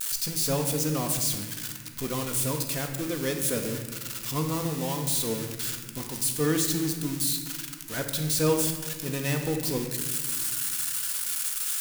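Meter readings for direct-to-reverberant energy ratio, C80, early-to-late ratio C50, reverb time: 3.0 dB, 8.0 dB, 6.0 dB, 1.6 s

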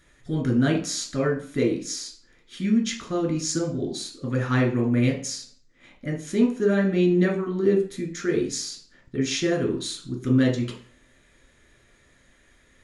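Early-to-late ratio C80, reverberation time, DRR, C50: 13.5 dB, 0.45 s, -0.5 dB, 9.0 dB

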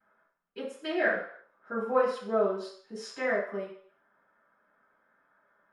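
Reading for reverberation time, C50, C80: 0.60 s, 4.5 dB, 8.0 dB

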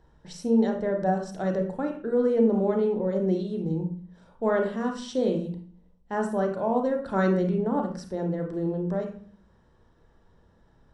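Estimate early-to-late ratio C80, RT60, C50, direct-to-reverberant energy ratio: 11.0 dB, 0.45 s, 6.5 dB, 3.0 dB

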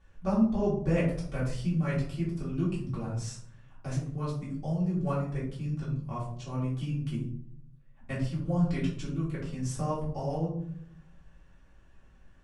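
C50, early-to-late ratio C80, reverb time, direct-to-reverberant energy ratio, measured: 4.5 dB, 9.0 dB, 0.60 s, -8.5 dB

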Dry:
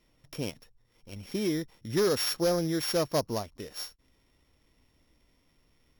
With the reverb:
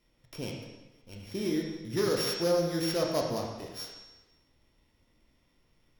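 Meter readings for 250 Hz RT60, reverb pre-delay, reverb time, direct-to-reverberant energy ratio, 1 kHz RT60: 1.1 s, 7 ms, 1.1 s, 0.0 dB, 1.1 s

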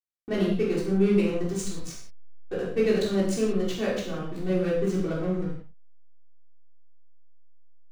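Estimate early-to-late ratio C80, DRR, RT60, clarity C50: 6.0 dB, -7.0 dB, no single decay rate, 2.5 dB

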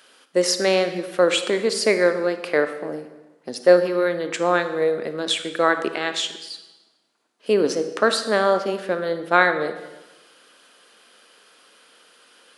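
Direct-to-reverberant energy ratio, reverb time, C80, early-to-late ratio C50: 9.0 dB, 1.1 s, 12.0 dB, 10.5 dB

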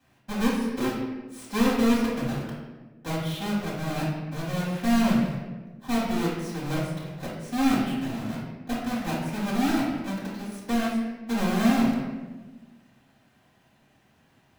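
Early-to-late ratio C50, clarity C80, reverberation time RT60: 0.5 dB, 3.5 dB, 1.3 s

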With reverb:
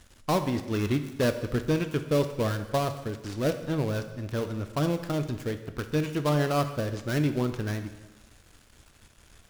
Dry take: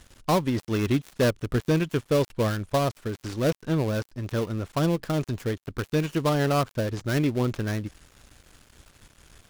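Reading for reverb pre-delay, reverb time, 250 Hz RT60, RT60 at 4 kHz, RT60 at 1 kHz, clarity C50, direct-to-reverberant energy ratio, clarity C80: 4 ms, 1.1 s, 1.1 s, 1.0 s, 1.1 s, 10.5 dB, 8.0 dB, 12.5 dB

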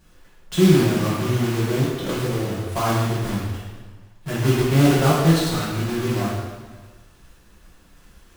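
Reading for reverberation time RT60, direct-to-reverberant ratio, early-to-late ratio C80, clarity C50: 1.4 s, -8.5 dB, 2.0 dB, -1.0 dB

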